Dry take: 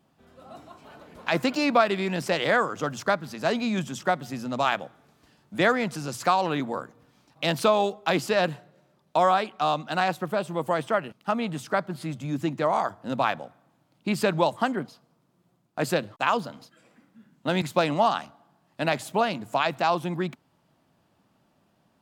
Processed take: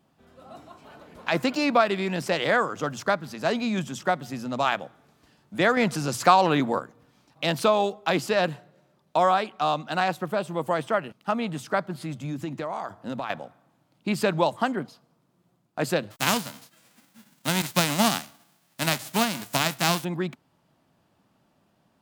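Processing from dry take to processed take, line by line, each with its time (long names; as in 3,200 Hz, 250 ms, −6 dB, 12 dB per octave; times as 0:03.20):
0:05.77–0:06.79: clip gain +5 dB
0:11.91–0:13.30: downward compressor, threshold −27 dBFS
0:16.10–0:20.03: spectral envelope flattened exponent 0.3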